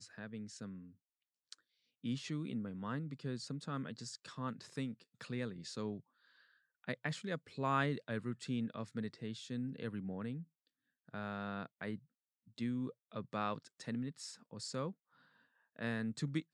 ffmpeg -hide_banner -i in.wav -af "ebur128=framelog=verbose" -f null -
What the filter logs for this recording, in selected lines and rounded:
Integrated loudness:
  I:         -42.2 LUFS
  Threshold: -52.7 LUFS
Loudness range:
  LRA:         4.8 LU
  Threshold: -62.8 LUFS
  LRA low:   -44.9 LUFS
  LRA high:  -40.1 LUFS